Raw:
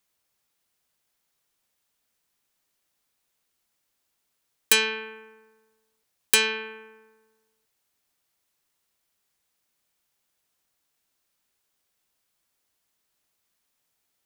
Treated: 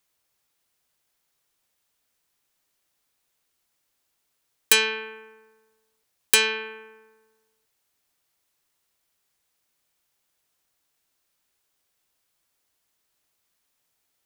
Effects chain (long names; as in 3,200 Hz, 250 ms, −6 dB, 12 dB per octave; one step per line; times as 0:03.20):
parametric band 210 Hz −4.5 dB 0.27 octaves
level +1.5 dB